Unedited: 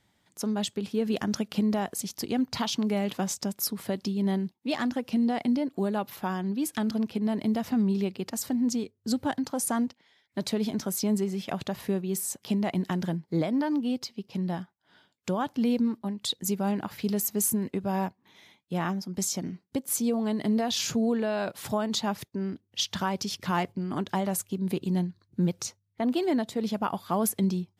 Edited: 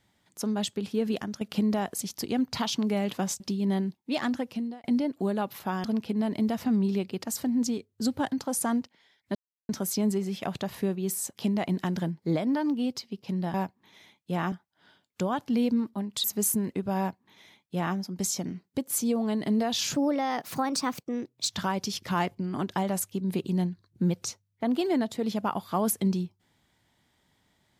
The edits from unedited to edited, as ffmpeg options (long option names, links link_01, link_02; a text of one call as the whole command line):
ffmpeg -i in.wav -filter_complex "[0:a]asplit=12[link_01][link_02][link_03][link_04][link_05][link_06][link_07][link_08][link_09][link_10][link_11][link_12];[link_01]atrim=end=1.41,asetpts=PTS-STARTPTS,afade=type=out:start_time=1.07:duration=0.34:silence=0.199526[link_13];[link_02]atrim=start=1.41:end=3.402,asetpts=PTS-STARTPTS,afade=type=in:duration=0.004:curve=hsin:silence=0.199526[link_14];[link_03]atrim=start=3.968:end=5.41,asetpts=PTS-STARTPTS,afade=type=out:start_time=0.962:duration=0.48[link_15];[link_04]atrim=start=5.41:end=6.412,asetpts=PTS-STARTPTS,afade=type=in:duration=0.004:curve=hsin[link_16];[link_05]atrim=start=6.898:end=10.41,asetpts=PTS-STARTPTS,afade=type=out:start_time=3.508:duration=0.004:curve=hsin[link_17];[link_06]atrim=start=10.41:end=10.75,asetpts=PTS-STARTPTS,volume=0[link_18];[link_07]atrim=start=10.75:end=14.602,asetpts=PTS-STARTPTS,afade=type=in:duration=0.004:curve=hsin[link_19];[link_08]atrim=start=17.958:end=18.942[link_20];[link_09]atrim=start=14.598:end=16.322[link_21];[link_10]atrim=start=17.218:end=20.924[link_22];[link_11]atrim=start=20.92:end=22.89,asetpts=PTS-STARTPTS,asetrate=55125,aresample=44100[link_23];[link_12]atrim=start=22.886[link_24];[link_13][link_14]concat=n=2:v=0:a=1[link_25];[link_15][link_16]concat=n=2:v=0:a=1[link_26];[link_25][link_26]acrossfade=duration=0.004:curve1=hsin:curve2=hsin[link_27];[link_17][link_18][link_19]concat=n=3:v=0:a=1[link_28];[link_27][link_28]acrossfade=duration=0.004:curve1=hsin:curve2=hsin[link_29];[link_29][link_20]acrossfade=duration=0.004:curve1=hsin:curve2=hsin[link_30];[link_30][link_21]acrossfade=duration=0.004:curve1=hsin:curve2=hsin[link_31];[link_31][link_22]acrossfade=duration=0.004:curve1=hsin:curve2=hsin[link_32];[link_32][link_23]acrossfade=duration=0.004:curve1=hsin:curve2=hsin[link_33];[link_33][link_24]acrossfade=duration=0.004:curve1=hsin:curve2=hsin" out.wav